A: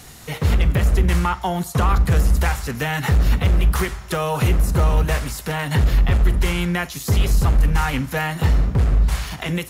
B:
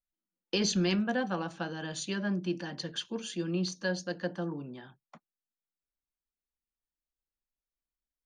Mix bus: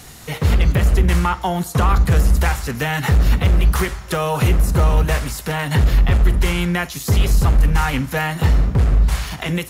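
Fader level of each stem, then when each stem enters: +2.0, −14.0 decibels; 0.00, 0.00 seconds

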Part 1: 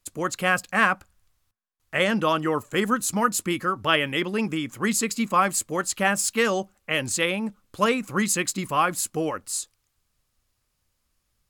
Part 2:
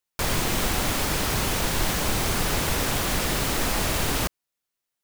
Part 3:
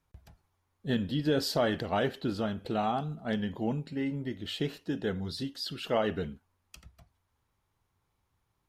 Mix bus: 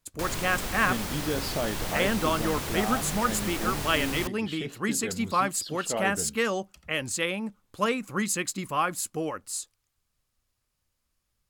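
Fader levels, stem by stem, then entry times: −4.5, −8.5, −3.0 decibels; 0.00, 0.00, 0.00 seconds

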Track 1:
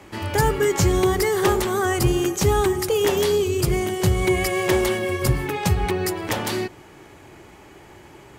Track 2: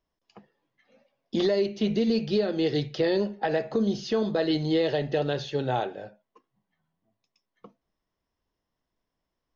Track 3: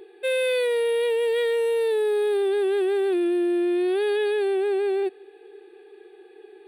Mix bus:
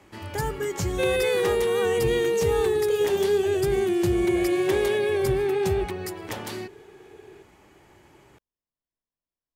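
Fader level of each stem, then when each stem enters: −9.0, −15.5, −1.0 decibels; 0.00, 0.00, 0.75 seconds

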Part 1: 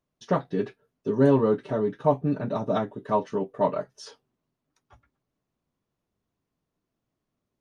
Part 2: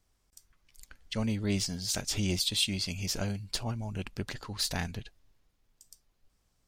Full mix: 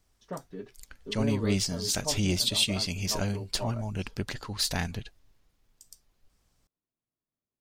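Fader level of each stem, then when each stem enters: −14.0, +3.0 decibels; 0.00, 0.00 seconds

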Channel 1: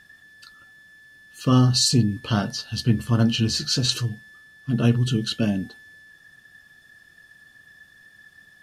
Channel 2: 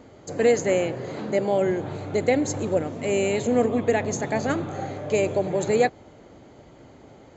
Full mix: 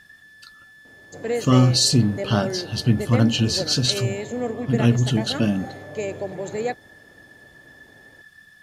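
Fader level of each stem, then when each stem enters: +1.5, −6.0 decibels; 0.00, 0.85 seconds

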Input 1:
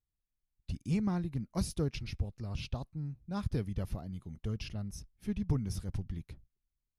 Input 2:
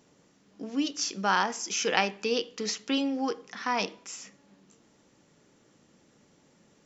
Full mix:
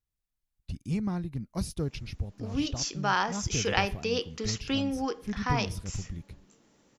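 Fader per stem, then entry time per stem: +1.0, −1.5 decibels; 0.00, 1.80 seconds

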